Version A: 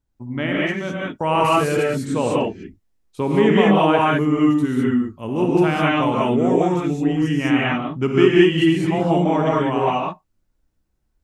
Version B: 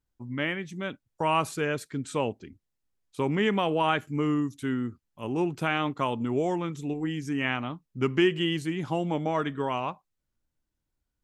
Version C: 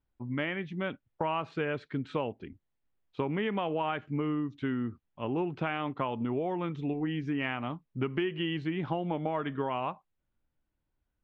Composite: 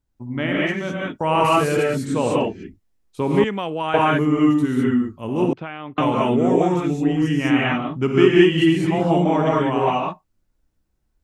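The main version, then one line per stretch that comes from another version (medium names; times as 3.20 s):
A
3.44–3.94 s: from B
5.53–5.98 s: from C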